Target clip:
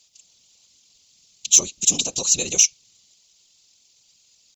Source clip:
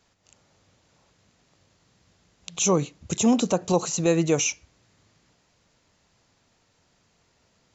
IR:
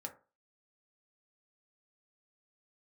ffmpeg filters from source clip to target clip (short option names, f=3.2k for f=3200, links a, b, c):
-af "atempo=1.7,aexciter=amount=12.9:drive=6:freq=2.6k,afftfilt=real='hypot(re,im)*cos(2*PI*random(0))':imag='hypot(re,im)*sin(2*PI*random(1))':win_size=512:overlap=0.75,volume=-5.5dB"